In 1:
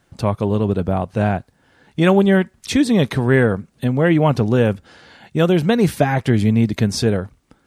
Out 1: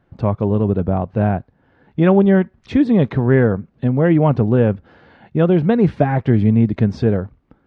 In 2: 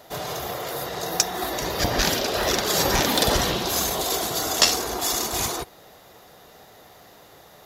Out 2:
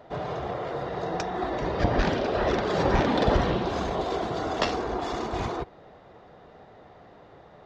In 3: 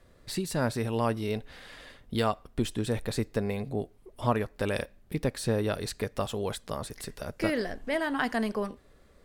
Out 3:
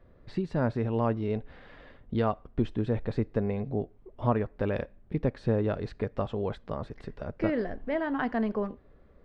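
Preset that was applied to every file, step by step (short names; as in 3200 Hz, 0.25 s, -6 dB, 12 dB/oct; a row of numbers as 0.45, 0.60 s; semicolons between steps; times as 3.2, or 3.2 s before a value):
tape spacing loss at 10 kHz 41 dB; gain +2.5 dB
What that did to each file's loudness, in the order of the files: +1.0, -4.5, +0.5 LU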